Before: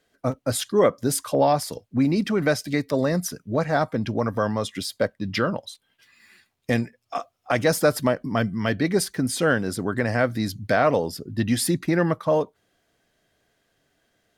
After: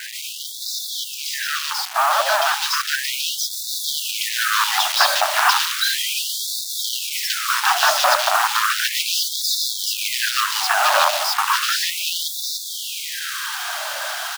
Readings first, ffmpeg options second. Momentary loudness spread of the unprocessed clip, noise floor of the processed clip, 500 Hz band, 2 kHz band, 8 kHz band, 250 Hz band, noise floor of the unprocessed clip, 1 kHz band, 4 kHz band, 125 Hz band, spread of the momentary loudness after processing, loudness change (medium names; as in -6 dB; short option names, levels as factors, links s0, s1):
8 LU, -31 dBFS, -7.0 dB, +9.0 dB, +10.5 dB, under -40 dB, -73 dBFS, +8.5 dB, +16.0 dB, under -40 dB, 9 LU, +4.5 dB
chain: -filter_complex "[0:a]aeval=exprs='val(0)+0.5*0.0596*sgn(val(0))':c=same,alimiter=limit=0.2:level=0:latency=1:release=18,bandreject=f=680:w=16,aeval=exprs='(mod(8.91*val(0)+1,2)-1)/8.91':c=same,highshelf=f=4300:g=-9.5,acontrast=74,highpass=110,equalizer=f=190:t=q:w=4:g=-5,equalizer=f=1300:t=q:w=4:g=3,equalizer=f=2100:t=q:w=4:g=-10,lowpass=f=6300:w=0.5412,lowpass=f=6300:w=1.3066,acrossover=split=650|2600[s0][s1][s2];[s2]adelay=150[s3];[s0]adelay=240[s4];[s4][s1][s3]amix=inputs=3:normalize=0,acrusher=bits=4:mix=0:aa=0.000001,dynaudnorm=f=500:g=13:m=3.76,afftfilt=real='re*gte(b*sr/1024,550*pow(3500/550,0.5+0.5*sin(2*PI*0.34*pts/sr)))':imag='im*gte(b*sr/1024,550*pow(3500/550,0.5+0.5*sin(2*PI*0.34*pts/sr)))':win_size=1024:overlap=0.75,volume=1.33"